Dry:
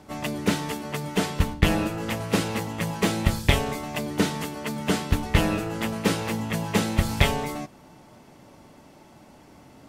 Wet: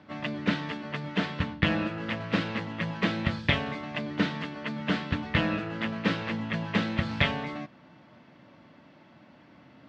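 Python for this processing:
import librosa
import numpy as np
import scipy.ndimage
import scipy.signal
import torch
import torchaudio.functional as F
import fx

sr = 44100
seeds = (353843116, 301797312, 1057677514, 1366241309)

y = fx.cabinet(x, sr, low_hz=120.0, low_slope=12, high_hz=4000.0, hz=(410.0, 810.0, 1700.0), db=(-9, -7, 4))
y = y * librosa.db_to_amplitude(-2.0)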